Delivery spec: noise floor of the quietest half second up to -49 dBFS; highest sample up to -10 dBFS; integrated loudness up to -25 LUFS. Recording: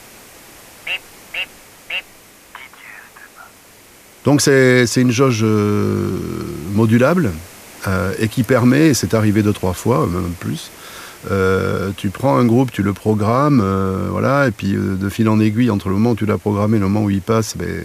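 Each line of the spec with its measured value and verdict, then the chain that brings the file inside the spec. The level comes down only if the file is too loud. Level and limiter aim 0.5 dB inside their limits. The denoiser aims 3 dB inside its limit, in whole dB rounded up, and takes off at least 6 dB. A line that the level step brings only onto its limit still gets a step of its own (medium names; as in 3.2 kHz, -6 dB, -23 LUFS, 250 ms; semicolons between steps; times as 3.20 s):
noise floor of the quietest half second -44 dBFS: fail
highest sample -2.0 dBFS: fail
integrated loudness -16.5 LUFS: fail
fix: trim -9 dB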